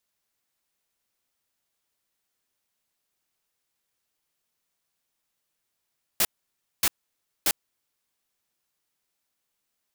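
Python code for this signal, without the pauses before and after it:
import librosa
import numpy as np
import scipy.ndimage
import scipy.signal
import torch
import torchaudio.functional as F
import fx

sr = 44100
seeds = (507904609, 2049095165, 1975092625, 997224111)

y = fx.noise_burst(sr, seeds[0], colour='white', on_s=0.05, off_s=0.58, bursts=3, level_db=-21.5)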